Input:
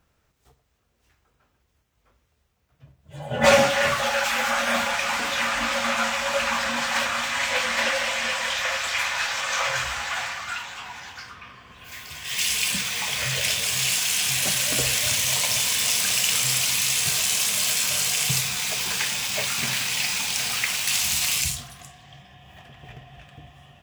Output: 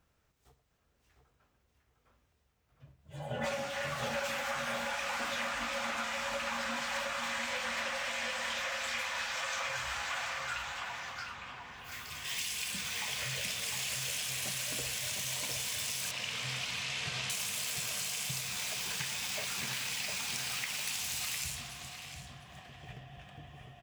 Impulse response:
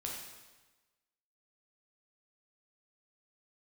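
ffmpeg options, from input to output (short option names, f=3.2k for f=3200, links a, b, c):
-filter_complex "[0:a]asettb=1/sr,asplit=3[a][b][c];[a]atrim=end=16.114[d];[b]atrim=start=16.11:end=17.3,asetpts=PTS-STARTPTS,afade=t=in:d=0.004:c=qsin,afade=t=out:st=1.186:d=0.004:c=qsin,lowpass=3.6k[e];[c]atrim=start=17.296[f];[d][e]acrossfade=d=0.004:c1=hsin:c2=qsin[g];[g][f]acrossfade=d=0.004:c1=qsin:c2=hsin,acompressor=threshold=-28dB:ratio=6,asplit=2[h][i];[i]adelay=705,lowpass=f=2.6k:p=1,volume=-4dB,asplit=2[j][k];[k]adelay=705,lowpass=f=2.6k:p=1,volume=0.3,asplit=2[l][m];[m]adelay=705,lowpass=f=2.6k:p=1,volume=0.3,asplit=2[n][o];[o]adelay=705,lowpass=f=2.6k:p=1,volume=0.3[p];[h][j][l][n][p]amix=inputs=5:normalize=0,volume=-6dB"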